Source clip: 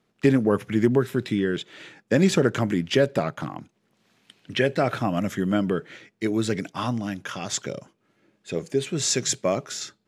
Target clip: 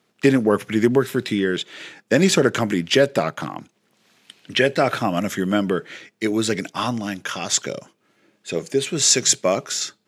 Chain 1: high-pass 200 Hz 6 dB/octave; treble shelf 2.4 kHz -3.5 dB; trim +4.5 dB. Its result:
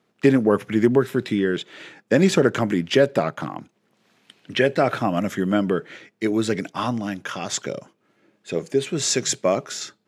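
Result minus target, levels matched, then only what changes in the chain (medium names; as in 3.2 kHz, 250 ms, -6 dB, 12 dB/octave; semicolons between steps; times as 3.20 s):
4 kHz band -4.0 dB
change: treble shelf 2.4 kHz +4.5 dB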